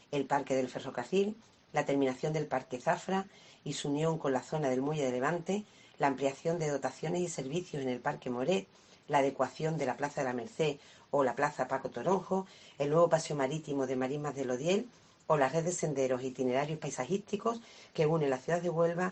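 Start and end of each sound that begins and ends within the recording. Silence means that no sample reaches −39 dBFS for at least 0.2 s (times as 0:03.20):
0:01.74–0:03.22
0:03.66–0:05.61
0:06.00–0:08.62
0:09.10–0:10.73
0:11.13–0:12.42
0:12.80–0:14.83
0:15.30–0:17.57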